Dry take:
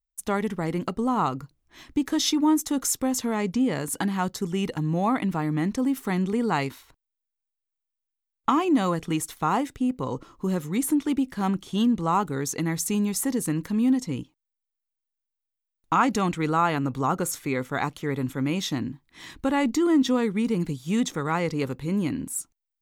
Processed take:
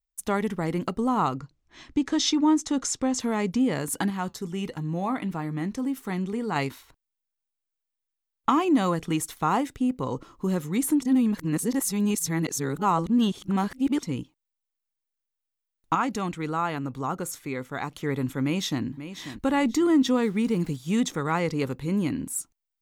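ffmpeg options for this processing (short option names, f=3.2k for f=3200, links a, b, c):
-filter_complex "[0:a]asettb=1/sr,asplit=3[a][b][c];[a]atrim=end=1.354[d];[b]atrim=start=1.35:end=3.2,asetpts=PTS-STARTPTS,afade=t=in:d=0.004:c=qsin,afade=t=out:st=1.846:d=0.004:c=qsin,lowpass=f=7.6k:w=0.5412,lowpass=f=7.6k:w=1.3066[e];[c]atrim=start=3.196[f];[d][e]acrossfade=d=0.004:c1=hsin:c2=qsin[g];[g][f]acrossfade=d=0.004:c1=qsin:c2=hsin,asettb=1/sr,asplit=3[h][i][j];[h]atrim=end=4.104[k];[i]atrim=start=4.1:end=6.56,asetpts=PTS-STARTPTS,afade=t=in:d=0.004:c=qsin,afade=t=out:st=2.456:d=0.004:c=qsin,flanger=delay=5:depth=2.1:regen=-77:speed=1.4:shape=sinusoidal[l];[j]atrim=start=6.556[m];[k][l]acrossfade=d=0.004:c1=hsin:c2=qsin[n];[n][m]acrossfade=d=0.004:c1=qsin:c2=hsin,asplit=2[o][p];[p]afade=t=in:st=18.43:d=0.01,afade=t=out:st=18.84:d=0.01,aecho=0:1:540|1080|1620:0.266073|0.0665181|0.0166295[q];[o][q]amix=inputs=2:normalize=0,asplit=3[r][s][t];[r]afade=t=out:st=20.19:d=0.02[u];[s]aeval=exprs='val(0)*gte(abs(val(0)),0.00501)':c=same,afade=t=in:st=20.19:d=0.02,afade=t=out:st=20.76:d=0.02[v];[t]afade=t=in:st=20.76:d=0.02[w];[u][v][w]amix=inputs=3:normalize=0,asplit=5[x][y][z][aa][ab];[x]atrim=end=11.022[ac];[y]atrim=start=11.018:end=14.032,asetpts=PTS-STARTPTS,areverse[ad];[z]atrim=start=14.028:end=15.952[ae];[aa]atrim=start=15.948:end=17.922,asetpts=PTS-STARTPTS,volume=-5dB[af];[ab]atrim=start=17.918[ag];[ac][ad]acrossfade=d=0.004:c1=hsin:c2=hsin[ah];[ah][ae]acrossfade=d=0.004:c1=hsin:c2=hsin[ai];[ai][af]acrossfade=d=0.004:c1=hsin:c2=hsin[aj];[aj][ag]acrossfade=d=0.004:c1=hsin:c2=hsin"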